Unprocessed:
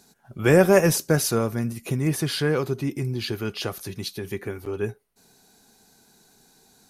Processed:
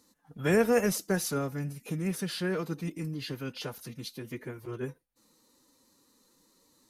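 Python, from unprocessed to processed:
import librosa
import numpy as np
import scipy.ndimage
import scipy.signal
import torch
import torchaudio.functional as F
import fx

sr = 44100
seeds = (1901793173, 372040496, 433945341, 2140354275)

y = fx.pitch_keep_formants(x, sr, semitones=3.5)
y = y * 10.0 ** (-8.0 / 20.0)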